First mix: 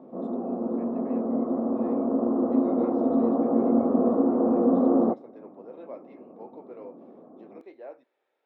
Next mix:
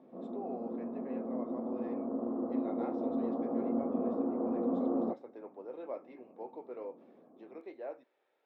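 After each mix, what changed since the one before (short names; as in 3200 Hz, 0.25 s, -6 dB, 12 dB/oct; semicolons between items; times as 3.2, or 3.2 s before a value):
background -11.0 dB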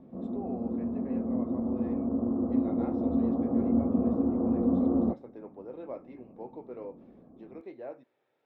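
master: remove HPF 370 Hz 12 dB/oct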